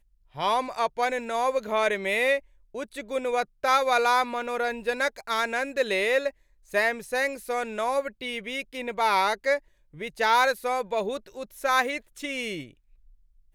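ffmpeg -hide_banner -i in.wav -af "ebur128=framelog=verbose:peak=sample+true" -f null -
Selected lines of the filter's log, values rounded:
Integrated loudness:
  I:         -26.3 LUFS
  Threshold: -36.9 LUFS
Loudness range:
  LRA:         2.4 LU
  Threshold: -46.5 LUFS
  LRA low:   -27.8 LUFS
  LRA high:  -25.4 LUFS
Sample peak:
  Peak:      -10.3 dBFS
True peak:
  Peak:      -10.3 dBFS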